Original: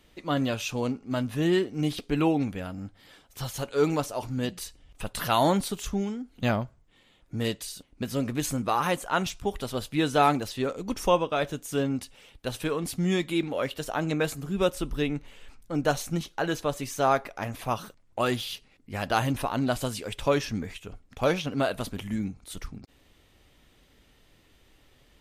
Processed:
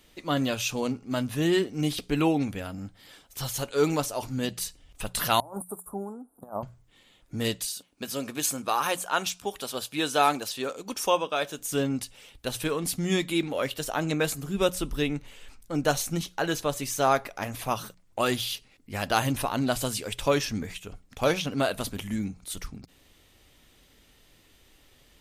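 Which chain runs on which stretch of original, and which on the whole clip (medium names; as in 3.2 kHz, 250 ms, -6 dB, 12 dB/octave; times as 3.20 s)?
5.40–6.63 s: frequency weighting ITU-R 468 + compressor with a negative ratio -32 dBFS, ratio -0.5 + inverse Chebyshev band-stop 2–6.5 kHz, stop band 50 dB
7.65–11.59 s: high-pass 440 Hz 6 dB/octave + band-stop 2 kHz
whole clip: treble shelf 3.9 kHz +7.5 dB; hum notches 60/120/180 Hz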